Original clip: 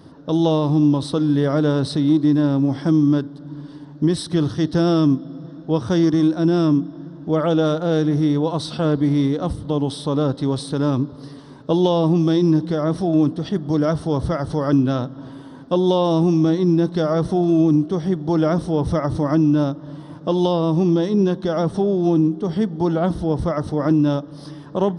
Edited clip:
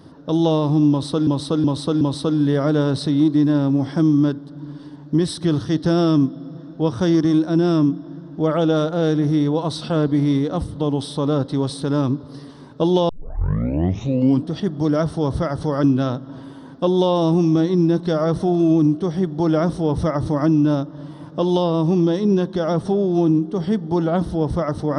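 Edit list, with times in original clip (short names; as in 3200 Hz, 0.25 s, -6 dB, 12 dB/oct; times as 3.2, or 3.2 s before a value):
0.9–1.27 loop, 4 plays
11.98 tape start 1.39 s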